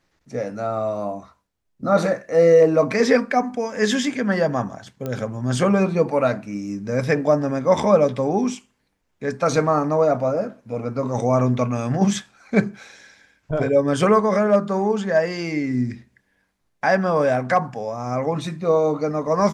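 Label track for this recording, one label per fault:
5.060000	5.060000	pop -15 dBFS

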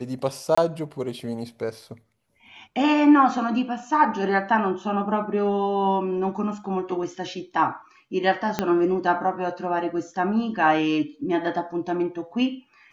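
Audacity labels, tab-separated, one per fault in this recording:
0.550000	0.570000	gap 25 ms
8.590000	8.590000	pop -8 dBFS

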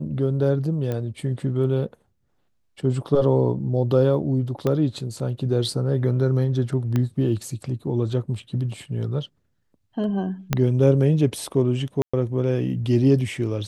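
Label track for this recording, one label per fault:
0.920000	0.920000	pop -16 dBFS
4.670000	4.670000	pop -12 dBFS
6.960000	6.960000	pop -12 dBFS
10.530000	10.530000	pop -6 dBFS
12.020000	12.130000	gap 0.115 s

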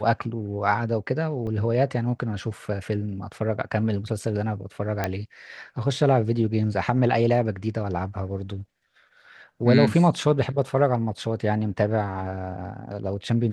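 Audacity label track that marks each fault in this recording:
1.470000	1.470000	gap 3.5 ms
5.040000	5.040000	pop -10 dBFS

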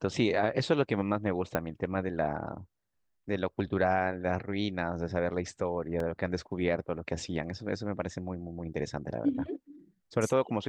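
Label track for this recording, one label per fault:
1.550000	1.550000	pop -16 dBFS
6.000000	6.000000	gap 3 ms

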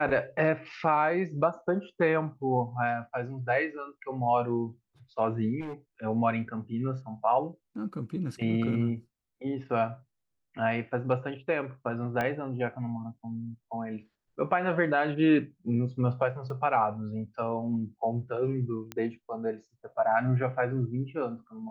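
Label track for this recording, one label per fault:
5.600000	5.740000	clipped -34 dBFS
12.210000	12.210000	pop -17 dBFS
16.500000	16.500000	gap 2.2 ms
18.920000	18.920000	pop -20 dBFS

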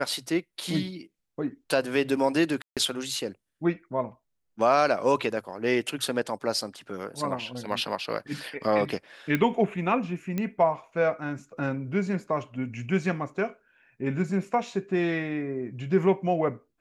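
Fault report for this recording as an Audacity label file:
2.620000	2.770000	gap 0.147 s
9.350000	9.350000	pop -13 dBFS
10.380000	10.380000	pop -16 dBFS

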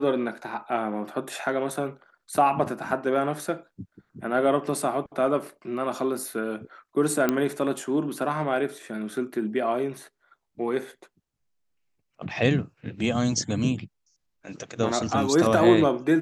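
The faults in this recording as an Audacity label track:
7.290000	7.290000	pop -9 dBFS

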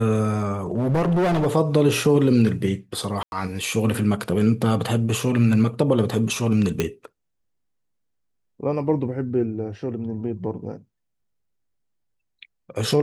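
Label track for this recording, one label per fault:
0.710000	1.470000	clipped -17.5 dBFS
3.230000	3.320000	gap 91 ms
6.800000	6.800000	pop -8 dBFS

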